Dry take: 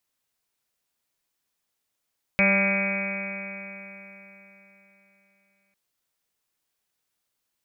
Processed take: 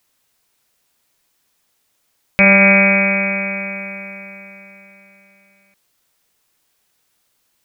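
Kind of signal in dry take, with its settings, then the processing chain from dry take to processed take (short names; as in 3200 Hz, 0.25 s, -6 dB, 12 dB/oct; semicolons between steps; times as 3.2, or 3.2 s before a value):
stretched partials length 3.35 s, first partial 195 Hz, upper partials -15/-2/-12.5/-16.5/-15/-12/-9.5/-11.5/-6/3/-1.5 dB, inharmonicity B 0.00096, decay 3.74 s, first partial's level -22.5 dB
maximiser +14 dB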